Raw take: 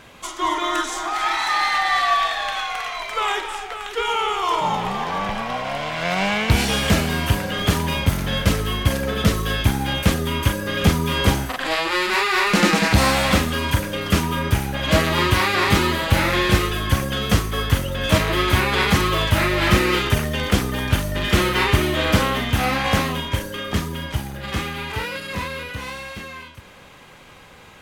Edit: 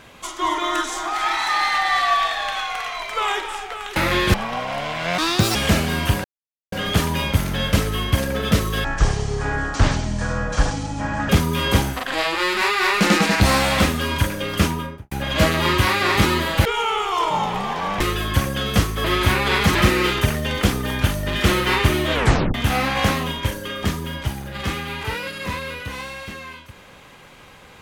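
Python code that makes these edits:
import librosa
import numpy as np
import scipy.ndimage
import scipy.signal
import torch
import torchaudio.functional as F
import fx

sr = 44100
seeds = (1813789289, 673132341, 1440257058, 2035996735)

y = fx.studio_fade_out(x, sr, start_s=14.15, length_s=0.49)
y = fx.edit(y, sr, fx.swap(start_s=3.96, length_s=1.35, other_s=16.18, other_length_s=0.38),
    fx.speed_span(start_s=6.15, length_s=0.61, speed=1.64),
    fx.insert_silence(at_s=7.45, length_s=0.48),
    fx.speed_span(start_s=9.57, length_s=1.25, speed=0.51),
    fx.cut(start_s=17.6, length_s=0.71),
    fx.cut(start_s=19.02, length_s=0.62),
    fx.tape_stop(start_s=22.02, length_s=0.41), tone=tone)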